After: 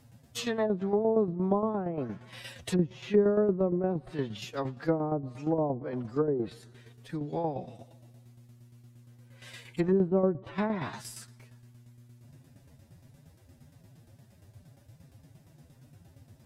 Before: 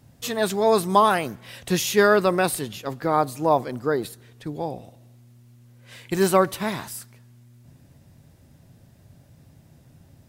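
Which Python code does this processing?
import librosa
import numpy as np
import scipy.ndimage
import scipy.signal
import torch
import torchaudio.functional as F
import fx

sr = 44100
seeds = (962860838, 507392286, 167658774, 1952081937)

y = fx.stretch_vocoder(x, sr, factor=1.6)
y = fx.env_lowpass_down(y, sr, base_hz=390.0, full_db=-18.5)
y = fx.tremolo_shape(y, sr, shape='saw_down', hz=8.6, depth_pct=60)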